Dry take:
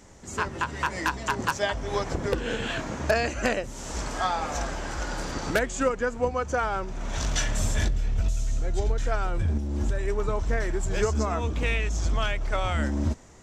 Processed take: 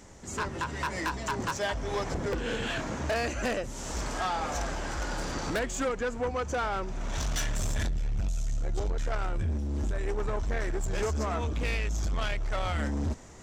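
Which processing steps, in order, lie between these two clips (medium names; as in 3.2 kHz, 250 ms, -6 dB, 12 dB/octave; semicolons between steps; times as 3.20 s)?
reverse; upward compressor, threshold -44 dBFS; reverse; saturation -25 dBFS, distortion -11 dB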